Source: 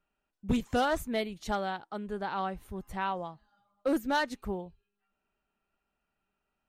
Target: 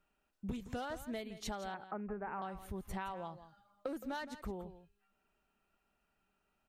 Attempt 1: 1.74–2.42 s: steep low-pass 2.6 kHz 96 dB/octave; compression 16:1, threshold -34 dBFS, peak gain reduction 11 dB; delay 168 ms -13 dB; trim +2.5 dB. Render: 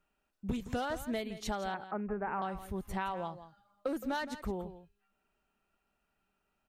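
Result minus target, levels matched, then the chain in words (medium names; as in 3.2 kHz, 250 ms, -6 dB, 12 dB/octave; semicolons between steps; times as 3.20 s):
compression: peak gain reduction -6 dB
1.74–2.42 s: steep low-pass 2.6 kHz 96 dB/octave; compression 16:1, threshold -40.5 dBFS, peak gain reduction 17 dB; delay 168 ms -13 dB; trim +2.5 dB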